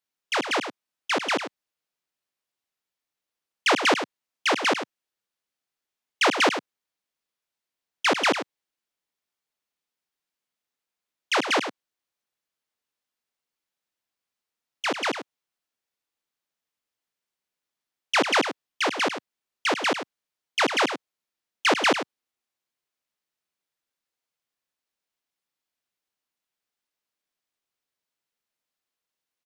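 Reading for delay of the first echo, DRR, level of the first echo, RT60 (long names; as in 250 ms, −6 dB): 100 ms, no reverb audible, −9.5 dB, no reverb audible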